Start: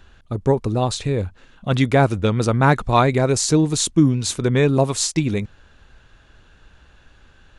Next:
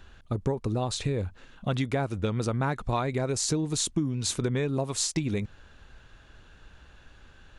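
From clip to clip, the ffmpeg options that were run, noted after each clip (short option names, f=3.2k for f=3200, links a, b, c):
-af "acompressor=threshold=-22dB:ratio=10,volume=-2dB"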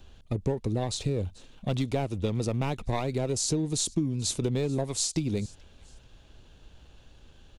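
-filter_complex "[0:a]acrossover=split=370|1000|2400[a][b][c][d];[c]aeval=exprs='abs(val(0))':c=same[e];[d]aecho=1:1:437|874:0.0794|0.0254[f];[a][b][e][f]amix=inputs=4:normalize=0"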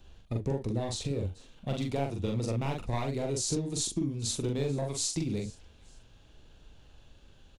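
-filter_complex "[0:a]flanger=delay=5.9:depth=7:regen=-80:speed=0.31:shape=triangular,asplit=2[a][b];[b]adelay=43,volume=-3dB[c];[a][c]amix=inputs=2:normalize=0"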